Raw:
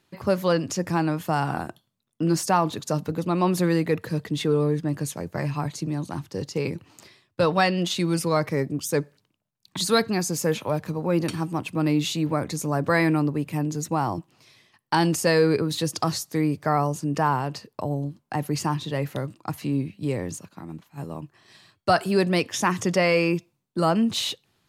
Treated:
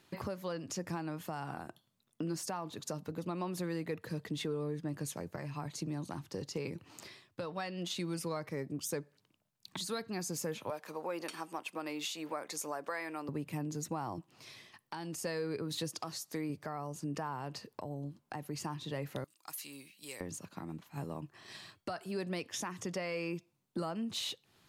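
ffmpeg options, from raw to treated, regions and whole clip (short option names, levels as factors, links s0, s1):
-filter_complex "[0:a]asettb=1/sr,asplit=3[s0][s1][s2];[s0]atrim=end=10.704[s3];[s1]atrim=start=10.7:end=13.29,asetpts=PTS-STARTPTS,afade=t=in:d=0.004:c=qsin,afade=t=out:st=2.586:d=0.004:c=qsin,highpass=530,bandreject=f=4000:w=19[s4];[s2]atrim=start=13.286[s5];[s3][s4]acrossfade=d=0.004:c1=hsin:c2=qsin[s6];[s6][s5]acrossfade=d=0.004:c1=qsin:c2=hsin,asettb=1/sr,asplit=3[s7][s8][s9];[s7]atrim=end=15.904[s10];[s8]atrim=start=15.9:end=16.5,asetpts=PTS-STARTPTS,afade=t=in:d=0.004:c=qsin,afade=t=out:st=0.596:d=0.004:c=qsin,equalizer=f=79:t=o:w=2.7:g=-6.5,asoftclip=type=hard:threshold=0.2[s11];[s9]atrim=start=16.496[s12];[s10][s11]acrossfade=d=0.004:c1=hsin:c2=qsin[s13];[s13][s12]acrossfade=d=0.004:c1=qsin:c2=hsin,asettb=1/sr,asplit=3[s14][s15][s16];[s14]atrim=end=19.244[s17];[s15]atrim=start=19.24:end=20.21,asetpts=PTS-STARTPTS,afade=t=in:d=0.004:c=qsin,afade=t=out:st=0.966:d=0.004:c=qsin,aderivative,acompressor=mode=upward:threshold=0.00112:ratio=2.5:attack=3.2:release=140:knee=2.83:detection=peak[s18];[s16]atrim=start=20.206[s19];[s17][s18]acrossfade=d=0.004:c1=hsin:c2=qsin[s20];[s20][s19]acrossfade=d=0.004:c1=qsin:c2=hsin,lowshelf=f=140:g=-4,acompressor=threshold=0.00794:ratio=3,alimiter=level_in=1.78:limit=0.0631:level=0:latency=1:release=464,volume=0.562,volume=1.33"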